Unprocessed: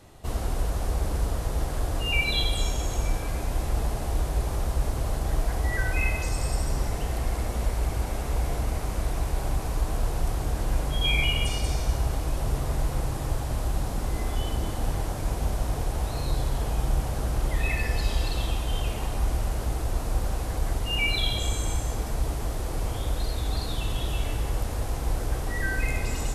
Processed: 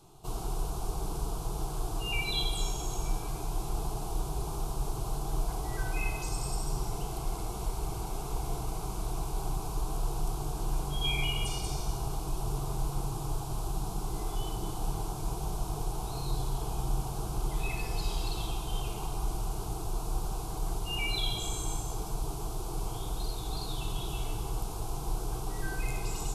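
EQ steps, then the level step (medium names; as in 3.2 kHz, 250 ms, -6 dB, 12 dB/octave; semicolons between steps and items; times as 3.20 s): dynamic bell 2 kHz, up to +5 dB, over -47 dBFS, Q 2.6; static phaser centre 370 Hz, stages 8; -2.0 dB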